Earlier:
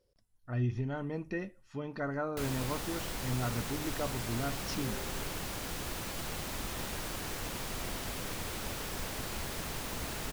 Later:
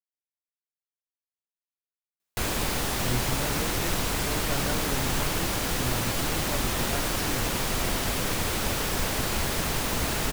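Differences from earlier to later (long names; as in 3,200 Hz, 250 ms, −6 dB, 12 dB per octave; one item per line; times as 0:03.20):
speech: entry +2.50 s
background +11.0 dB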